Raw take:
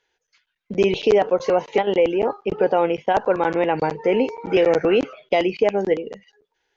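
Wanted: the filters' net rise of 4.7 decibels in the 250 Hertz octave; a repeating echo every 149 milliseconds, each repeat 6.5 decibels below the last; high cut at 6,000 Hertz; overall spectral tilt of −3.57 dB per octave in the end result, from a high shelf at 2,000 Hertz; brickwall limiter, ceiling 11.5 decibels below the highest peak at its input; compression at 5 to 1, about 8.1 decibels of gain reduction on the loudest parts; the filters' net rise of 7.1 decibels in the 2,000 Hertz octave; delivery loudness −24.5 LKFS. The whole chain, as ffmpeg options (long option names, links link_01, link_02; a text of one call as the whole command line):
ffmpeg -i in.wav -af "lowpass=6000,equalizer=frequency=250:width_type=o:gain=7,highshelf=frequency=2000:gain=7,equalizer=frequency=2000:width_type=o:gain=4.5,acompressor=threshold=-19dB:ratio=5,alimiter=limit=-16.5dB:level=0:latency=1,aecho=1:1:149|298|447|596|745|894:0.473|0.222|0.105|0.0491|0.0231|0.0109,volume=1.5dB" out.wav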